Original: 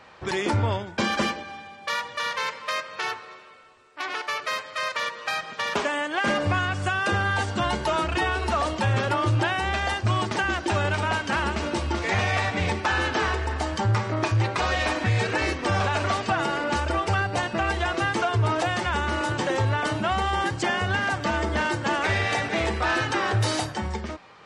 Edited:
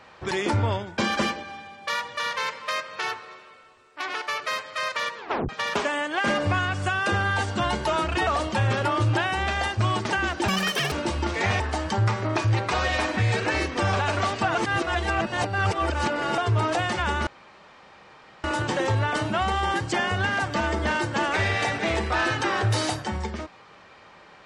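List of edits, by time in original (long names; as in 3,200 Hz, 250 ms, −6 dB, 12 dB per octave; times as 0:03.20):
0:05.17: tape stop 0.32 s
0:08.27–0:08.53: remove
0:10.74–0:11.60: play speed 196%
0:12.28–0:13.47: remove
0:16.42–0:18.25: reverse
0:19.14: splice in room tone 1.17 s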